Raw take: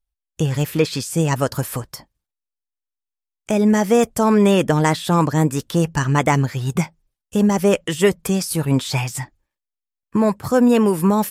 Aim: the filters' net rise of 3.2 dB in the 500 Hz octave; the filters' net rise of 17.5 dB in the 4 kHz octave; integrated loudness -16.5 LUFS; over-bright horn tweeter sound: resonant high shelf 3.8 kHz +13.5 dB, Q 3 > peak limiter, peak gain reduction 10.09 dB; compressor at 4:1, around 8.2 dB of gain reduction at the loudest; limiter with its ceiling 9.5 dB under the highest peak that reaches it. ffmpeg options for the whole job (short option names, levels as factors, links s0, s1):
-af "equalizer=f=500:t=o:g=4,equalizer=f=4000:t=o:g=6.5,acompressor=threshold=0.141:ratio=4,alimiter=limit=0.158:level=0:latency=1,highshelf=f=3800:t=q:w=3:g=13.5,volume=1.58,alimiter=limit=0.631:level=0:latency=1"